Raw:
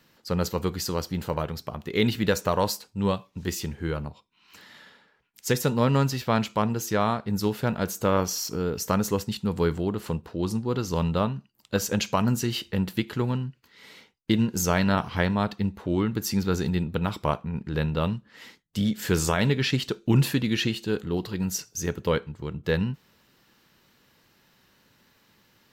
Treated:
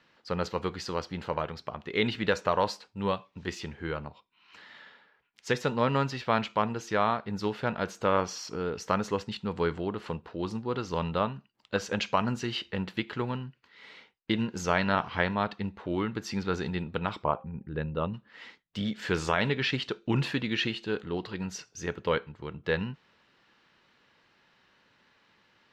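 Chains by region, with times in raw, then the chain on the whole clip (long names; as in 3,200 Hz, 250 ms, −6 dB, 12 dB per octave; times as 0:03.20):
0:17.23–0:18.14: spectral envelope exaggerated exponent 1.5 + high-frequency loss of the air 68 metres + hum removal 265.1 Hz, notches 3
whole clip: low-pass filter 3,300 Hz 12 dB per octave; low-shelf EQ 370 Hz −10.5 dB; level +1 dB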